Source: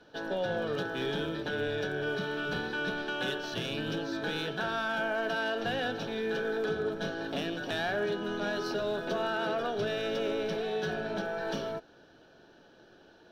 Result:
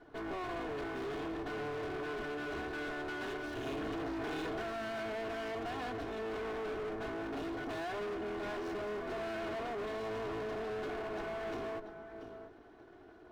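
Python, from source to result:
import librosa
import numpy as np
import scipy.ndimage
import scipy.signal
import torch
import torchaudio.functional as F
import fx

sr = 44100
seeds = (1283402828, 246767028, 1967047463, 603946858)

p1 = fx.lower_of_two(x, sr, delay_ms=2.8)
p2 = fx.peak_eq(p1, sr, hz=4600.0, db=-8.5, octaves=2.5)
p3 = p2 + fx.echo_single(p2, sr, ms=687, db=-15.5, dry=0)
p4 = 10.0 ** (-36.0 / 20.0) * np.tanh(p3 / 10.0 ** (-36.0 / 20.0))
p5 = fx.high_shelf(p4, sr, hz=3000.0, db=-10.5)
p6 = fx.clip_asym(p5, sr, top_db=-45.0, bottom_db=-38.5)
p7 = fx.env_flatten(p6, sr, amount_pct=100, at=(3.66, 4.62))
y = p7 * librosa.db_to_amplitude(4.0)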